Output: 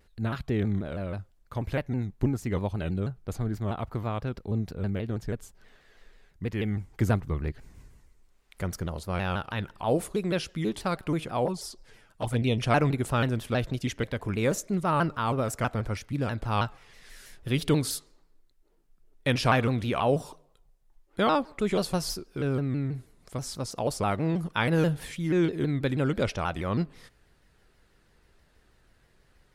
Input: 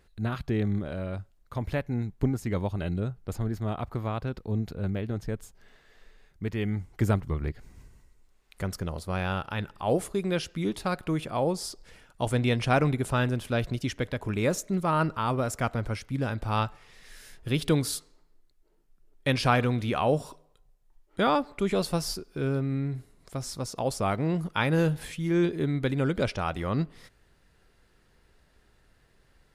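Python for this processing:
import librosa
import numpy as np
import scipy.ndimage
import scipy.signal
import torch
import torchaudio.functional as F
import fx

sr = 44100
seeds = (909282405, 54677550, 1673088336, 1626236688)

y = fx.env_flanger(x, sr, rest_ms=12.0, full_db=-20.5, at=(11.46, 12.63))
y = fx.vibrato_shape(y, sr, shape='saw_down', rate_hz=6.2, depth_cents=160.0)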